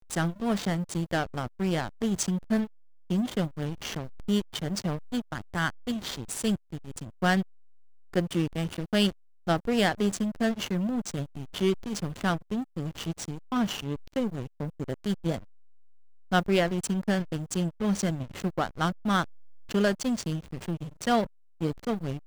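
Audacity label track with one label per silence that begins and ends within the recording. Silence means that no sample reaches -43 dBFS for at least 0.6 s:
7.430000	8.140000	silence
15.440000	16.320000	silence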